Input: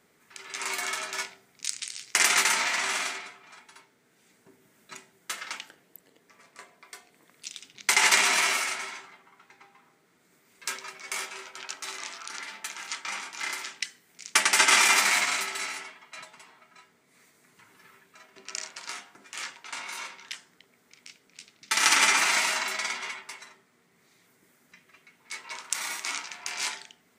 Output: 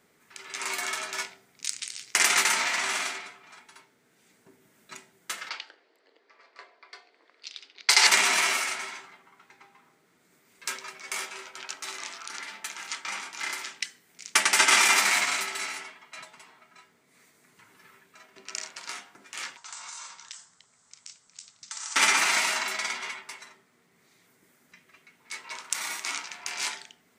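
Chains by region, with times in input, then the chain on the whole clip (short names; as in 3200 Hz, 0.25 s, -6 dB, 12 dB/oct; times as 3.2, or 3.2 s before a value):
5.49–8.07 low-pass opened by the level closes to 2600 Hz, open at -21 dBFS + HPF 350 Hz 24 dB/oct + bell 4600 Hz +12 dB 0.49 oct
19.57–21.96 EQ curve 110 Hz 0 dB, 340 Hz -14 dB, 1100 Hz +2 dB, 2300 Hz -7 dB, 8000 Hz +12 dB, 12000 Hz -25 dB + compressor 4:1, threshold -38 dBFS
whole clip: dry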